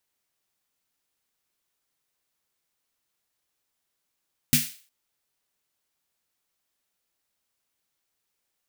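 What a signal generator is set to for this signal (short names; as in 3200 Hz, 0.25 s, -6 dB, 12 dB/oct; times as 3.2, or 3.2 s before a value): snare drum length 0.36 s, tones 150 Hz, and 240 Hz, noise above 1900 Hz, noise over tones 1.5 dB, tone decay 0.21 s, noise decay 0.41 s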